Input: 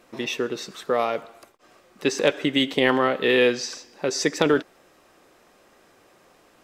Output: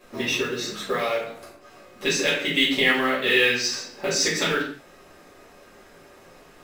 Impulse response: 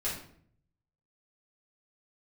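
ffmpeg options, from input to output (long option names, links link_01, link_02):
-filter_complex "[0:a]acrossover=split=1500[link_01][link_02];[link_01]acompressor=threshold=-31dB:ratio=6[link_03];[link_03][link_02]amix=inputs=2:normalize=0,acrusher=bits=6:mode=log:mix=0:aa=0.000001[link_04];[1:a]atrim=start_sample=2205,afade=type=out:start_time=0.27:duration=0.01,atrim=end_sample=12348[link_05];[link_04][link_05]afir=irnorm=-1:irlink=0,volume=1.5dB"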